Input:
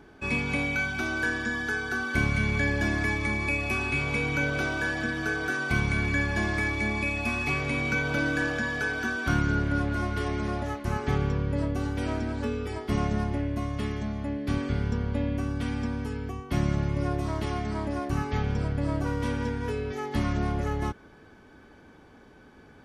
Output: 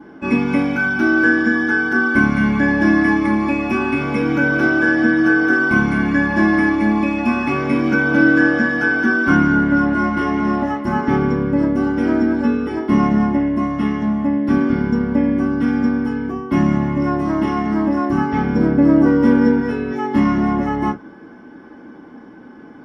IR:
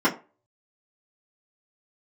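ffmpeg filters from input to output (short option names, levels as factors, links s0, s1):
-filter_complex "[0:a]asettb=1/sr,asplit=3[s0][s1][s2];[s0]atrim=end=18.554[s3];[s1]atrim=start=18.55:end=19.6,asetpts=PTS-STARTPTS,afade=t=in:d=0.004:c=qsin,afade=t=out:st=1.046:d=0.004:c=qsin,equalizer=f=330:t=o:w=2.2:g=5[s4];[s2]atrim=start=19.596[s5];[s3][s4]acrossfade=d=0.004:c1=hsin:c2=qsin[s6];[s6][s5]acrossfade=d=0.004:c1=qsin:c2=hsin[s7];[1:a]atrim=start_sample=2205,atrim=end_sample=3087[s8];[s7][s8]afir=irnorm=-1:irlink=0,volume=0.447"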